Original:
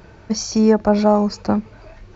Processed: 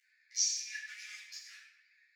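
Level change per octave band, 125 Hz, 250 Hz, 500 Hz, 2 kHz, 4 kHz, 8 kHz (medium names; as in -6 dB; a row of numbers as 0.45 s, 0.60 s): under -40 dB, under -40 dB, under -40 dB, -8.5 dB, -6.5 dB, no reading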